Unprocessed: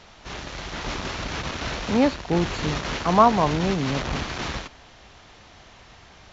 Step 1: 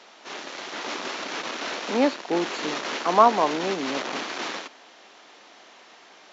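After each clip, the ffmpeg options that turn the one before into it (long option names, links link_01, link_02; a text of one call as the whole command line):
ffmpeg -i in.wav -af "highpass=frequency=270:width=0.5412,highpass=frequency=270:width=1.3066" out.wav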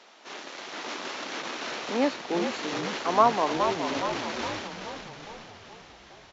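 ffmpeg -i in.wav -filter_complex "[0:a]asplit=8[link_01][link_02][link_03][link_04][link_05][link_06][link_07][link_08];[link_02]adelay=418,afreqshift=-42,volume=-7dB[link_09];[link_03]adelay=836,afreqshift=-84,volume=-12dB[link_10];[link_04]adelay=1254,afreqshift=-126,volume=-17.1dB[link_11];[link_05]adelay=1672,afreqshift=-168,volume=-22.1dB[link_12];[link_06]adelay=2090,afreqshift=-210,volume=-27.1dB[link_13];[link_07]adelay=2508,afreqshift=-252,volume=-32.2dB[link_14];[link_08]adelay=2926,afreqshift=-294,volume=-37.2dB[link_15];[link_01][link_09][link_10][link_11][link_12][link_13][link_14][link_15]amix=inputs=8:normalize=0,volume=-4dB" out.wav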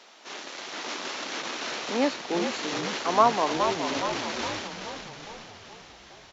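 ffmpeg -i in.wav -af "highshelf=frequency=4000:gain=6" out.wav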